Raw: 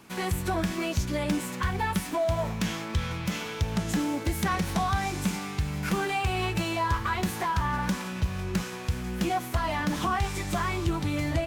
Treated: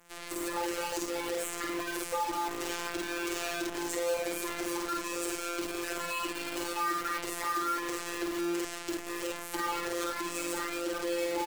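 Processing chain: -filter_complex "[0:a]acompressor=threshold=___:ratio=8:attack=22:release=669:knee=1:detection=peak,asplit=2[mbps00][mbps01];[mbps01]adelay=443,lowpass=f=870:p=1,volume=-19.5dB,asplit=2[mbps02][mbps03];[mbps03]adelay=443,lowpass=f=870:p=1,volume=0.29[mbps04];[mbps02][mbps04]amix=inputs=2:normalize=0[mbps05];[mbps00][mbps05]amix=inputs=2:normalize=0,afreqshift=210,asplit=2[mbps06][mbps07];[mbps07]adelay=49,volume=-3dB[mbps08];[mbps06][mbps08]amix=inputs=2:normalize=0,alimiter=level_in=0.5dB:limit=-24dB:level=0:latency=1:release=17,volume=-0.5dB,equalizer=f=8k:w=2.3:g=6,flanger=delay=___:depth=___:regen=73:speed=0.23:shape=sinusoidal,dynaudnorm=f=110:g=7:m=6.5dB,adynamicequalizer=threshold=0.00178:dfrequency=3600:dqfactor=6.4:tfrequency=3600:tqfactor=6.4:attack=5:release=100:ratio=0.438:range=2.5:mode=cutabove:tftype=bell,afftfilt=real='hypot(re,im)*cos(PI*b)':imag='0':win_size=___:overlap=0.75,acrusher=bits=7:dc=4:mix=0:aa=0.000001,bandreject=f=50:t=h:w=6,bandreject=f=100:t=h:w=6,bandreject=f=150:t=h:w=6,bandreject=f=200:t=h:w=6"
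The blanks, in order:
-28dB, 9.9, 2, 1024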